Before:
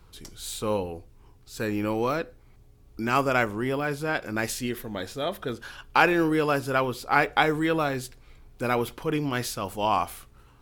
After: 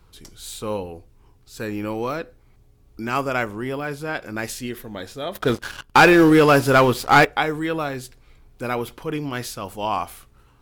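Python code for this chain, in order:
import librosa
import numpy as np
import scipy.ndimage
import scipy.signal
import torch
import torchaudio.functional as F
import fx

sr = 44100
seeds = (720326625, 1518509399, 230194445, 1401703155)

y = fx.leveller(x, sr, passes=3, at=(5.35, 7.25))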